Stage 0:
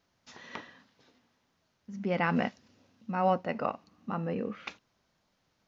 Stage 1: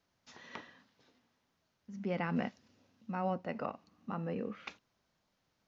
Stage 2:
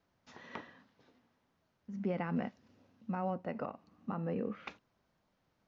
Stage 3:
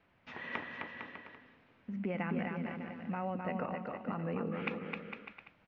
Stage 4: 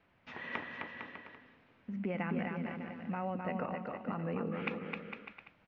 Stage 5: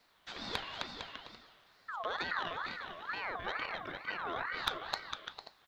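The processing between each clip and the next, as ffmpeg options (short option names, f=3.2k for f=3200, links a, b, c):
-filter_complex "[0:a]acrossover=split=400[a][b];[b]acompressor=threshold=-32dB:ratio=2.5[c];[a][c]amix=inputs=2:normalize=0,volume=-4.5dB"
-af "highshelf=f=2.8k:g=-11,alimiter=level_in=5dB:limit=-24dB:level=0:latency=1:release=262,volume=-5dB,volume=3.5dB"
-af "acompressor=threshold=-46dB:ratio=2,lowpass=f=2.5k:t=q:w=2.4,aecho=1:1:260|455|601.2|710.9|793.2:0.631|0.398|0.251|0.158|0.1,volume=6dB"
-af anull
-af "aexciter=amount=4.7:drive=3.3:freq=2.4k,aeval=exprs='0.251*(cos(1*acos(clip(val(0)/0.251,-1,1)))-cos(1*PI/2))+0.0251*(cos(6*acos(clip(val(0)/0.251,-1,1)))-cos(6*PI/2))':c=same,aeval=exprs='val(0)*sin(2*PI*1300*n/s+1300*0.35/2.2*sin(2*PI*2.2*n/s))':c=same,volume=1dB"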